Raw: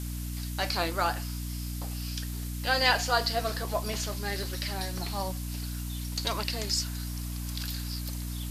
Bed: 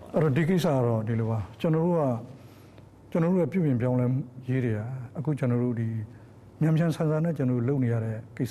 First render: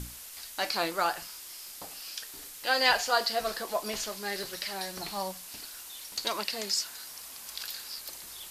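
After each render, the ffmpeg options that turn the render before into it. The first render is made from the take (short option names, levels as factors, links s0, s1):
-af "bandreject=f=60:t=h:w=6,bandreject=f=120:t=h:w=6,bandreject=f=180:t=h:w=6,bandreject=f=240:t=h:w=6,bandreject=f=300:t=h:w=6"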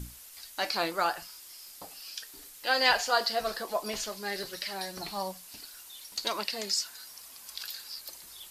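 -af "afftdn=nr=6:nf=-46"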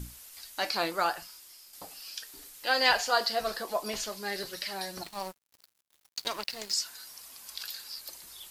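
-filter_complex "[0:a]asettb=1/sr,asplit=3[s0][s1][s2];[s0]atrim=end=5.034[s3];[s1]atrim=start=5.03:end=6.74,asetpts=PTS-STARTPTS,afade=t=in:d=0.004:c=qsin,afade=t=out:st=1.706:d=0.004:c=qsin,aeval=exprs='sgn(val(0))*max(abs(val(0))-0.01,0)':c=same[s4];[s2]atrim=start=6.736[s5];[s3][s4]acrossfade=d=0.004:c1=hsin:c2=qsin[s6];[s6][s5]acrossfade=d=0.004:c1=qsin:c2=hsin,asplit=2[s7][s8];[s7]atrim=end=1.73,asetpts=PTS-STARTPTS,afade=t=out:st=1.1:d=0.63:silence=0.473151[s9];[s8]atrim=start=1.73,asetpts=PTS-STARTPTS,afade=t=in:d=0.004:c=hsin:silence=0.473151[s10];[s9][s10]concat=n=2:v=0:a=1"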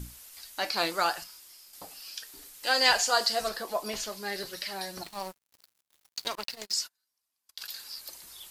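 -filter_complex "[0:a]asettb=1/sr,asplit=3[s0][s1][s2];[s0]atrim=end=0.774[s3];[s1]atrim=start=0.77:end=1.24,asetpts=PTS-STARTPTS,afade=t=in:d=0.004:c=qsin,afade=t=out:st=0.466:d=0.004:c=qsin,equalizer=f=5900:w=0.46:g=6[s4];[s2]atrim=start=1.236[s5];[s3][s4]acrossfade=d=0.004:c1=hsin:c2=qsin[s6];[s6][s5]acrossfade=d=0.004:c1=qsin:c2=hsin,asettb=1/sr,asplit=3[s7][s8][s9];[s7]atrim=end=2.634[s10];[s8]atrim=start=2.63:end=3.49,asetpts=PTS-STARTPTS,afade=t=in:d=0.004:c=qsin,afade=t=out:st=0.856:d=0.004:c=qsin,equalizer=f=7700:w=1.1:g=10[s11];[s9]atrim=start=3.486[s12];[s10][s11]acrossfade=d=0.004:c1=hsin:c2=qsin[s13];[s13][s12]acrossfade=d=0.004:c1=qsin:c2=hsin,asettb=1/sr,asplit=3[s14][s15][s16];[s14]atrim=end=6.354[s17];[s15]atrim=start=6.35:end=7.74,asetpts=PTS-STARTPTS,afade=t=in:d=0.004:c=qsin,afade=t=out:st=1.386:d=0.004:c=qsin,agate=range=0.0178:threshold=0.00794:ratio=16:release=100:detection=peak[s18];[s16]atrim=start=7.736[s19];[s17][s18]acrossfade=d=0.004:c1=hsin:c2=qsin[s20];[s20][s19]acrossfade=d=0.004:c1=qsin:c2=hsin"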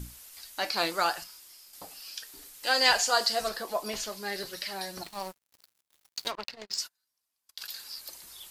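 -filter_complex "[0:a]asplit=3[s0][s1][s2];[s0]afade=t=out:st=6.3:d=0.02[s3];[s1]adynamicsmooth=sensitivity=2:basefreq=3300,afade=t=in:st=6.3:d=0.02,afade=t=out:st=6.77:d=0.02[s4];[s2]afade=t=in:st=6.77:d=0.02[s5];[s3][s4][s5]amix=inputs=3:normalize=0"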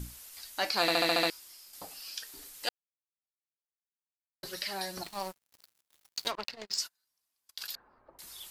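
-filter_complex "[0:a]asettb=1/sr,asplit=3[s0][s1][s2];[s0]atrim=end=7.754[s3];[s1]atrim=start=7.75:end=8.19,asetpts=PTS-STARTPTS,afade=t=in:d=0.004:c=qsin,afade=t=out:st=0.436:d=0.004:c=qsin,lowpass=f=1200:w=0.5412,lowpass=f=1200:w=1.3066[s4];[s2]atrim=start=8.186[s5];[s3][s4]acrossfade=d=0.004:c1=hsin:c2=qsin[s6];[s6][s5]acrossfade=d=0.004:c1=qsin:c2=hsin,asplit=10[s7][s8][s9][s10][s11][s12][s13][s14][s15][s16];[s7]atrim=end=0.882[s17];[s8]atrim=start=0.808:end=0.882[s18];[s9]atrim=start=0.808:end=0.882[s19];[s10]atrim=start=0.808:end=0.882[s20];[s11]atrim=start=0.808:end=0.882[s21];[s12]atrim=start=0.808:end=0.882[s22];[s13]atrim=start=0.808:end=0.882[s23];[s14]atrim=start=1.298:end=2.69,asetpts=PTS-STARTPTS,afade=t=out:st=1.388:d=0.004:c=hsin[s24];[s15]atrim=start=2.69:end=4.43,asetpts=PTS-STARTPTS,volume=0[s25];[s16]atrim=start=4.43,asetpts=PTS-STARTPTS,afade=t=in:d=0.004:c=hsin[s26];[s17][s18]acrossfade=d=0.004:c1=hsin:c2=hsin[s27];[s27][s19]acrossfade=d=0.004:c1=hsin:c2=hsin[s28];[s28][s20]acrossfade=d=0.004:c1=hsin:c2=hsin[s29];[s29][s21]acrossfade=d=0.004:c1=hsin:c2=hsin[s30];[s30][s22]acrossfade=d=0.004:c1=hsin:c2=hsin[s31];[s31][s23]acrossfade=d=0.004:c1=hsin:c2=hsin[s32];[s24][s25][s26]concat=n=3:v=0:a=1[s33];[s32][s33]acrossfade=d=0.004:c1=hsin:c2=hsin"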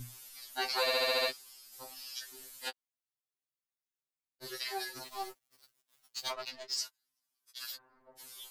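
-af "afftfilt=real='re*2.45*eq(mod(b,6),0)':imag='im*2.45*eq(mod(b,6),0)':win_size=2048:overlap=0.75"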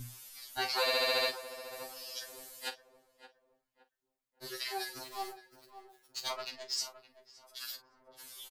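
-filter_complex "[0:a]asplit=2[s0][s1];[s1]adelay=42,volume=0.224[s2];[s0][s2]amix=inputs=2:normalize=0,asplit=2[s3][s4];[s4]adelay=567,lowpass=f=1400:p=1,volume=0.251,asplit=2[s5][s6];[s6]adelay=567,lowpass=f=1400:p=1,volume=0.39,asplit=2[s7][s8];[s8]adelay=567,lowpass=f=1400:p=1,volume=0.39,asplit=2[s9][s10];[s10]adelay=567,lowpass=f=1400:p=1,volume=0.39[s11];[s3][s5][s7][s9][s11]amix=inputs=5:normalize=0"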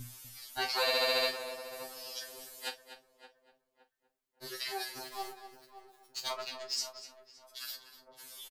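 -filter_complex "[0:a]asplit=2[s0][s1];[s1]adelay=20,volume=0.251[s2];[s0][s2]amix=inputs=2:normalize=0,asplit=2[s3][s4];[s4]adelay=244.9,volume=0.282,highshelf=f=4000:g=-5.51[s5];[s3][s5]amix=inputs=2:normalize=0"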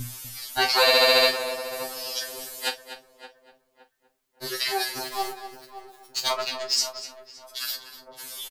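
-af "volume=3.76"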